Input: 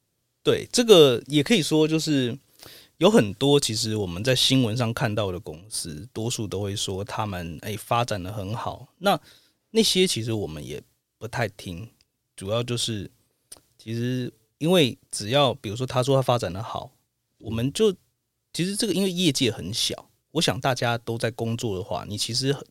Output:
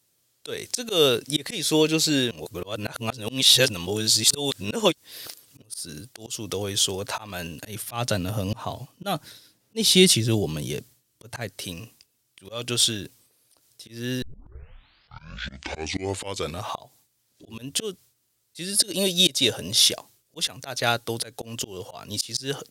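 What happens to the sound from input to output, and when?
2.31–5.62 reverse
7.63–11.49 bell 140 Hz +9.5 dB 2.2 oct
14.22 tape start 2.55 s
18.6–19.82 small resonant body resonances 580/3700 Hz, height 9 dB
whole clip: auto swell 0.24 s; tilt +2 dB/oct; gain +2.5 dB

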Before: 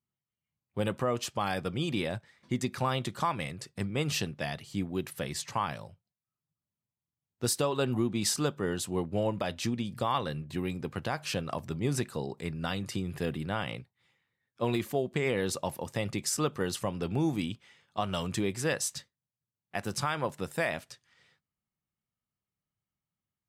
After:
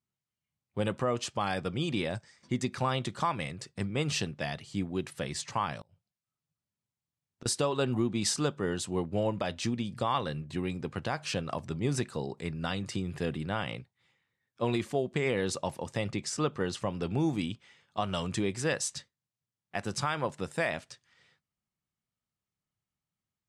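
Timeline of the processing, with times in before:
2.15–2.47 spectral gain 4400–9200 Hz +11 dB
5.8–7.46 flipped gate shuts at -31 dBFS, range -25 dB
16.08–16.91 high shelf 8700 Hz -12 dB
whole clip: LPF 9400 Hz 24 dB/oct

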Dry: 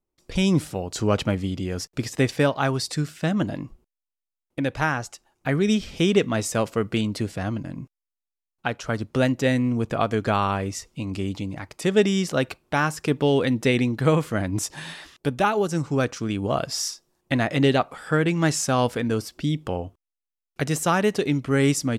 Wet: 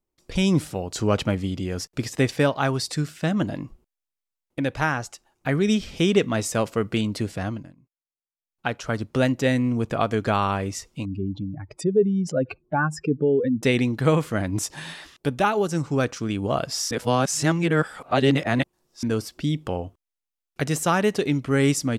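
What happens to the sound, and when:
7.44–8.67 dip -22.5 dB, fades 0.31 s
11.05–13.63 spectral contrast raised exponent 2.4
16.91–19.03 reverse

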